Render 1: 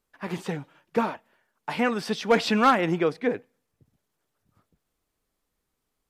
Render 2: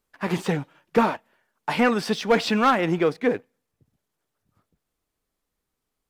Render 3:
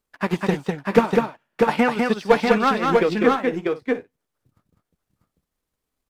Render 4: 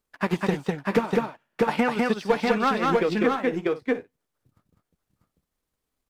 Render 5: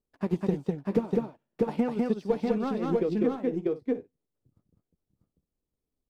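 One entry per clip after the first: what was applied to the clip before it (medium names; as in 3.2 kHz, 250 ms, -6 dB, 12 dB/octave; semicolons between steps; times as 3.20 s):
gain riding within 3 dB 0.5 s; waveshaping leveller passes 1
transient shaper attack +8 dB, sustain -8 dB; on a send: multi-tap echo 200/643/658/701 ms -3.5/-3.5/-12/-18.5 dB; on the sum: trim -3 dB
compression 4:1, threshold -17 dBFS, peak gain reduction 8 dB; trim -1 dB
FFT filter 390 Hz 0 dB, 1.6 kHz -17 dB, 4.5 kHz -12 dB; trim -2 dB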